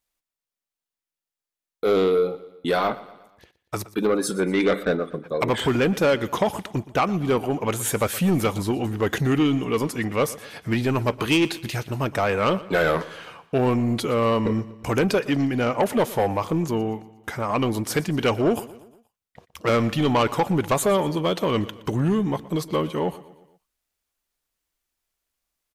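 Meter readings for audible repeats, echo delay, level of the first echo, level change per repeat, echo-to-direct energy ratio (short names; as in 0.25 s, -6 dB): 3, 0.119 s, -18.5 dB, -6.0 dB, -17.0 dB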